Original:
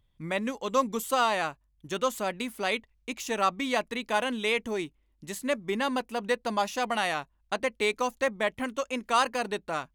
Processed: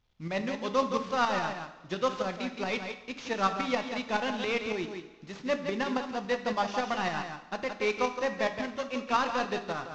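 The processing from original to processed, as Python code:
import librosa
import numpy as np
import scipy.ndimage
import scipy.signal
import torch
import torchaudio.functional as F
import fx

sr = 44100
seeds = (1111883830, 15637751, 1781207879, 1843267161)

p1 = fx.cvsd(x, sr, bps=32000)
p2 = p1 + fx.echo_single(p1, sr, ms=170, db=-7.0, dry=0)
p3 = fx.tremolo_shape(p2, sr, shape='saw_up', hz=7.2, depth_pct=55)
y = fx.rev_double_slope(p3, sr, seeds[0], early_s=0.81, late_s=3.2, knee_db=-19, drr_db=8.0)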